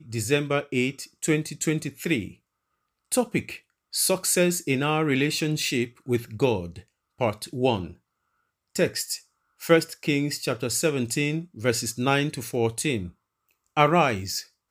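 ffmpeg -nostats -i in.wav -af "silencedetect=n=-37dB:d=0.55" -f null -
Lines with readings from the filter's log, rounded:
silence_start: 2.31
silence_end: 3.12 | silence_duration: 0.81
silence_start: 7.92
silence_end: 8.75 | silence_duration: 0.84
silence_start: 13.09
silence_end: 13.77 | silence_duration: 0.67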